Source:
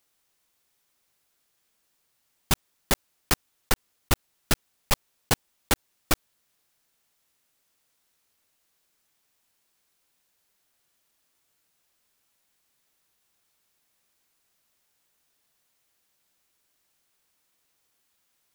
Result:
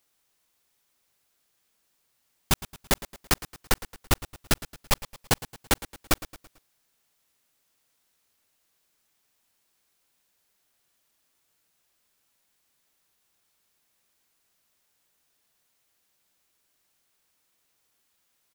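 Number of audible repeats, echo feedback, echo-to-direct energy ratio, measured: 3, 45%, -16.0 dB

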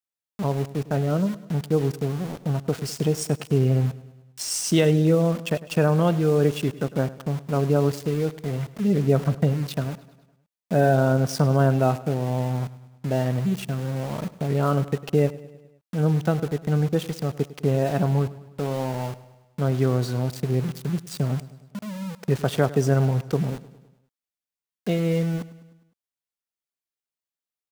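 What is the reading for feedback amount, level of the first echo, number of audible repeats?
57%, -18.0 dB, 4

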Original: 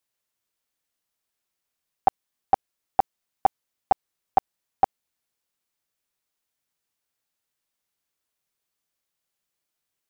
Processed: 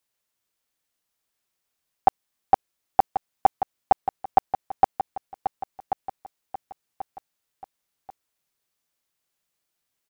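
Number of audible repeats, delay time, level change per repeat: 3, 1.086 s, -8.0 dB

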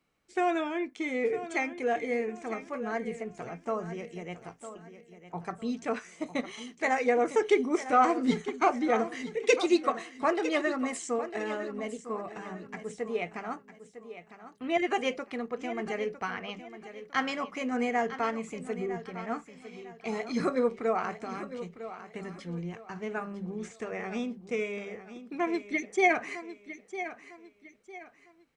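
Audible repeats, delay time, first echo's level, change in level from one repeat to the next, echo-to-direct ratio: 3, 0.954 s, -12.5 dB, -9.5 dB, -12.0 dB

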